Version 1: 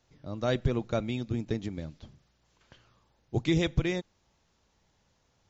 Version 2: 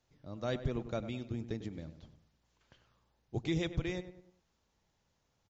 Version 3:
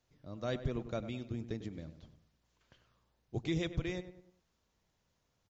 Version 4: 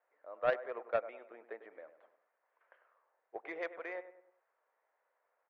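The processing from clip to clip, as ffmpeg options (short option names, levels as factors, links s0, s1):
-filter_complex "[0:a]asplit=2[s0][s1];[s1]adelay=99,lowpass=f=2000:p=1,volume=0.266,asplit=2[s2][s3];[s3]adelay=99,lowpass=f=2000:p=1,volume=0.44,asplit=2[s4][s5];[s5]adelay=99,lowpass=f=2000:p=1,volume=0.44,asplit=2[s6][s7];[s7]adelay=99,lowpass=f=2000:p=1,volume=0.44[s8];[s0][s2][s4][s6][s8]amix=inputs=5:normalize=0,volume=0.422"
-af "bandreject=f=840:w=16,volume=0.891"
-af "asuperpass=centerf=1000:order=8:qfactor=0.66,aeval=exprs='0.0422*(cos(1*acos(clip(val(0)/0.0422,-1,1)))-cos(1*PI/2))+0.0075*(cos(3*acos(clip(val(0)/0.0422,-1,1)))-cos(3*PI/2))':c=same,volume=3.76"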